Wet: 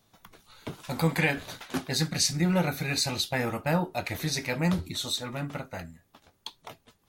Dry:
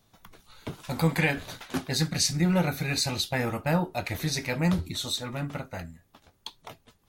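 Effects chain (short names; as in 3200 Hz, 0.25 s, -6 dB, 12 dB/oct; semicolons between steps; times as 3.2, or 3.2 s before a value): low shelf 94 Hz -6.5 dB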